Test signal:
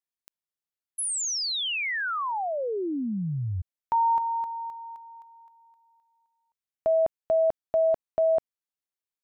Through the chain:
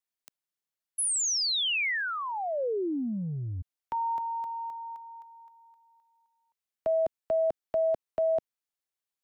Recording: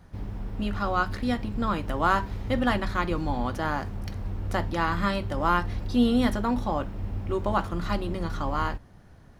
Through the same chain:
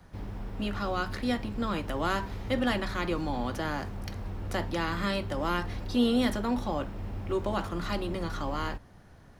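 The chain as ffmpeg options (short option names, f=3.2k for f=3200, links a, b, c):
-filter_complex "[0:a]lowshelf=f=290:g=-4,acrossover=split=240|610|1800[a][b][c][d];[a]asoftclip=type=tanh:threshold=-31dB[e];[c]acompressor=threshold=-37dB:ratio=6:attack=0.15:release=26:knee=1:detection=rms[f];[e][b][f][d]amix=inputs=4:normalize=0,volume=1dB"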